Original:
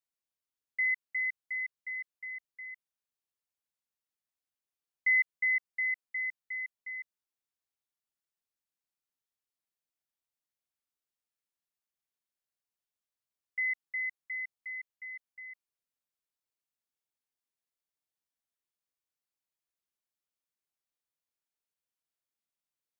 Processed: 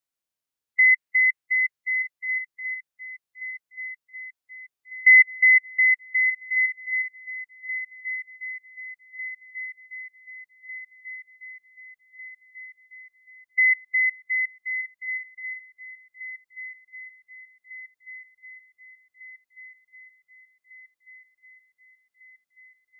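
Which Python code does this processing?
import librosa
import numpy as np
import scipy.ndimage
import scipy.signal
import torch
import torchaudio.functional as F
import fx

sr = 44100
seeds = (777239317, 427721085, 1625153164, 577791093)

y = fx.hpss(x, sr, part='harmonic', gain_db=9)
y = fx.dynamic_eq(y, sr, hz=2000.0, q=2.4, threshold_db=-34.0, ratio=4.0, max_db=6)
y = fx.echo_swing(y, sr, ms=1500, ratio=3, feedback_pct=65, wet_db=-16.5)
y = y * 10.0 ** (-2.0 / 20.0)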